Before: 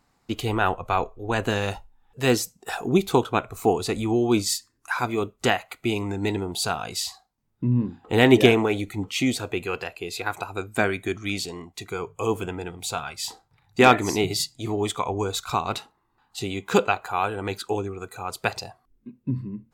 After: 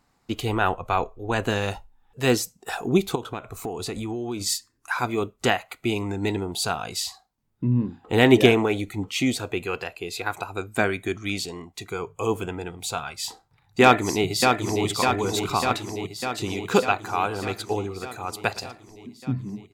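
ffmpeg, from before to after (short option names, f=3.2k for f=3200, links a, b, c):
-filter_complex "[0:a]asplit=3[a][b][c];[a]afade=t=out:st=3.14:d=0.02[d];[b]acompressor=threshold=-27dB:ratio=6:attack=3.2:release=140:knee=1:detection=peak,afade=t=in:st=3.14:d=0.02,afade=t=out:st=4.4:d=0.02[e];[c]afade=t=in:st=4.4:d=0.02[f];[d][e][f]amix=inputs=3:normalize=0,asplit=2[g][h];[h]afade=t=in:st=13.82:d=0.01,afade=t=out:st=14.86:d=0.01,aecho=0:1:600|1200|1800|2400|3000|3600|4200|4800|5400|6000|6600|7200:0.595662|0.416964|0.291874|0.204312|0.143018|0.100113|0.0700791|0.0490553|0.0343387|0.0240371|0.016826|0.0117782[i];[g][i]amix=inputs=2:normalize=0,asettb=1/sr,asplit=3[j][k][l];[j]atrim=end=17.074[m];[k]atrim=start=17.07:end=19.2,asetpts=PTS-STARTPTS,afade=t=in:d=0.004:c=qsin,afade=t=out:st=2.126:d=0.004:c=qsin,aecho=1:1:114:0.112,atrim=end_sample=93933[n];[l]atrim=start=19.196[o];[m][n]acrossfade=d=0.004:c1=hsin:c2=qsin[p];[p][o]acrossfade=d=0.004:c1=qsin:c2=hsin"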